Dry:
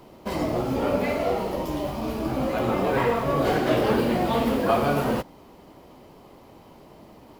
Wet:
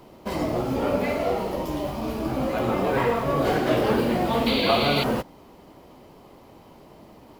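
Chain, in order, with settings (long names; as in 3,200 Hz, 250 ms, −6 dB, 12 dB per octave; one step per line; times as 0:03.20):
sound drawn into the spectrogram noise, 0:04.46–0:05.04, 2,000–4,700 Hz −28 dBFS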